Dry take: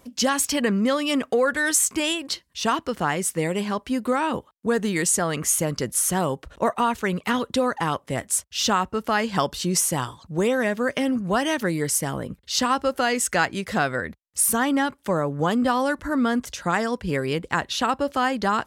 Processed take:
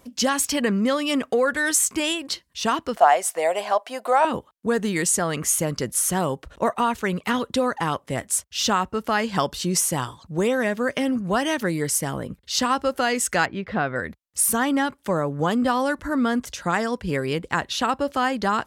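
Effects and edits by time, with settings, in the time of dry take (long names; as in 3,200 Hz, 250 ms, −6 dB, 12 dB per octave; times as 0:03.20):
0:02.97–0:04.25: high-pass with resonance 680 Hz, resonance Q 7.7
0:13.46–0:13.96: high-frequency loss of the air 340 metres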